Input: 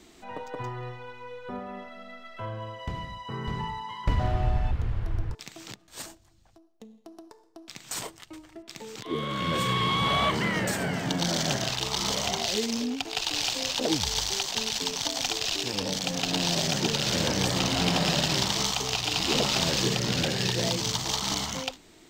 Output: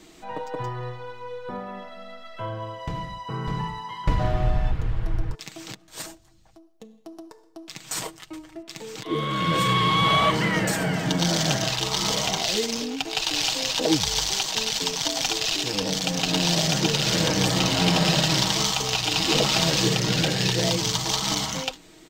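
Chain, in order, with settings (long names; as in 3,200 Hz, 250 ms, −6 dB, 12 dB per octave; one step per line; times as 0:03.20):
comb filter 6.3 ms, depth 49%
level +3 dB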